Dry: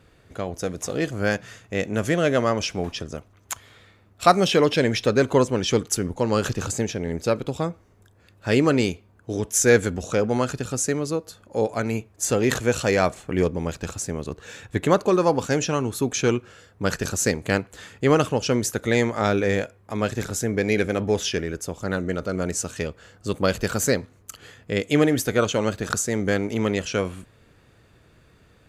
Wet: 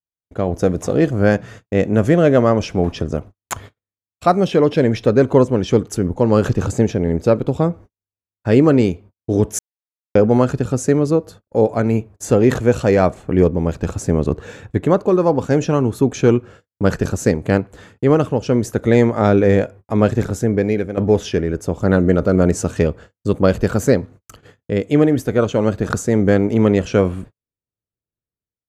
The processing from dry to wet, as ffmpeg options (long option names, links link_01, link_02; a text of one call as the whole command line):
ffmpeg -i in.wav -filter_complex "[0:a]asplit=4[link_01][link_02][link_03][link_04];[link_01]atrim=end=9.59,asetpts=PTS-STARTPTS,afade=type=out:start_time=9.586:duration=0.004:curve=hsin[link_05];[link_02]atrim=start=9.59:end=10.15,asetpts=PTS-STARTPTS,volume=0[link_06];[link_03]atrim=start=10.15:end=20.97,asetpts=PTS-STARTPTS,afade=type=in:duration=0.004:curve=hsin,afade=type=out:start_time=9.84:duration=0.98:silence=0.281838[link_07];[link_04]atrim=start=20.97,asetpts=PTS-STARTPTS,afade=type=in:duration=0.004:curve=hsin:silence=0.281838[link_08];[link_05][link_06][link_07][link_08]concat=n=4:v=0:a=1,agate=range=-55dB:threshold=-44dB:ratio=16:detection=peak,tiltshelf=frequency=1400:gain=7.5,dynaudnorm=framelen=160:gausssize=5:maxgain=11.5dB,volume=-1dB" out.wav